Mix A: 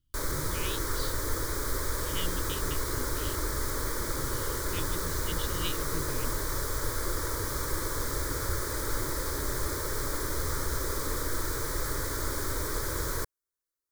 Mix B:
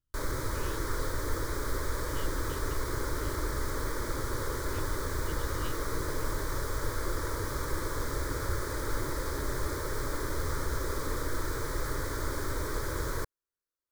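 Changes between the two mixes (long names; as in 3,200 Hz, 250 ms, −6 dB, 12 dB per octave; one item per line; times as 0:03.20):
speech −10.0 dB
master: add high-shelf EQ 4,400 Hz −8.5 dB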